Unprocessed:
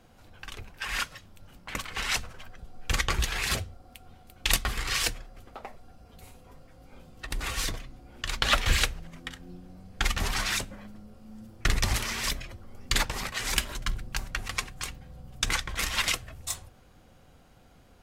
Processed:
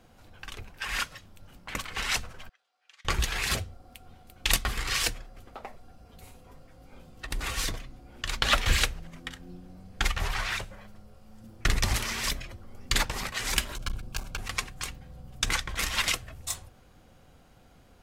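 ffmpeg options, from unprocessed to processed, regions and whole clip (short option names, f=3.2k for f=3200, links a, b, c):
-filter_complex "[0:a]asettb=1/sr,asplit=3[a][b][c];[a]atrim=end=2.494[d];[b]atrim=start=2.49:end=3.05,asetpts=PTS-STARTPTS,afade=t=in:d=0.004:c=qsin,afade=t=out:st=0.556:d=0.004:c=qsin,aderivative,acompressor=threshold=-48dB:ratio=4:attack=3.2:release=140:knee=1:detection=peak,highpass=580,lowpass=3k[e];[c]atrim=start=3.046[f];[d][e]acrossfade=d=0.004:c1=hsin:c2=qsin[g];[g][f]acrossfade=d=0.004:c1=qsin:c2=hsin,asettb=1/sr,asplit=3[h][i][j];[h]atrim=end=10.084[k];[i]atrim=start=10.08:end=11.44,asetpts=PTS-STARTPTS,afade=t=in:d=0.004:c=qsin,afade=t=out:st=1.356:d=0.004:c=qsin,acrossover=split=3400[l][m];[m]acompressor=threshold=-41dB:ratio=4:attack=1:release=60[n];[l][n]amix=inputs=2:normalize=0,equalizer=f=250:t=o:w=0.63:g=-14[o];[j]atrim=start=11.436[p];[k][o]acrossfade=d=0.004:c1=hsin:c2=qsin[q];[q][p]acrossfade=d=0.004:c1=qsin:c2=hsin,asettb=1/sr,asplit=3[r][s][t];[r]atrim=end=13.754[u];[s]atrim=start=13.75:end=14.4,asetpts=PTS-STARTPTS,afade=t=in:d=0.004:c=qsin,afade=t=out:st=0.646:d=0.004:c=qsin,aeval=exprs='clip(val(0),-1,0.02)':c=same,asuperstop=centerf=1900:order=8:qfactor=5.1[v];[t]atrim=start=14.396[w];[u][v]acrossfade=d=0.004:c1=hsin:c2=qsin[x];[x][w]acrossfade=d=0.004:c1=qsin:c2=hsin"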